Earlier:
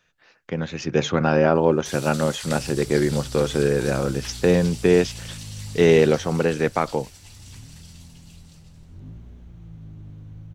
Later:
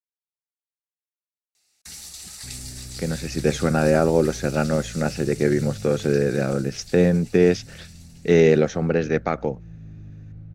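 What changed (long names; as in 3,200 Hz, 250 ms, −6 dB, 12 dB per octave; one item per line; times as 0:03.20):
speech: entry +2.50 s
second sound: add high-frequency loss of the air 200 metres
master: add thirty-one-band graphic EQ 200 Hz +3 dB, 1,000 Hz −12 dB, 3,150 Hz −9 dB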